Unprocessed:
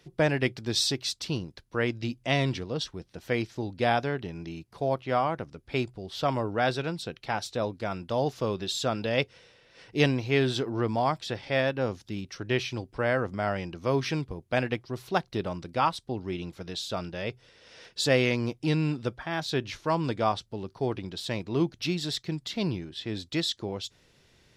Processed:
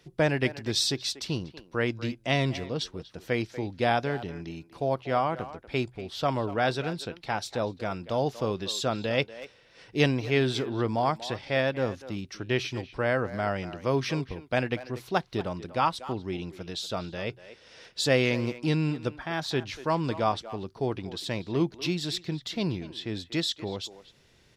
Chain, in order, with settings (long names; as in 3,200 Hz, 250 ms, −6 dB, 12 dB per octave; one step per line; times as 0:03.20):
far-end echo of a speakerphone 240 ms, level −14 dB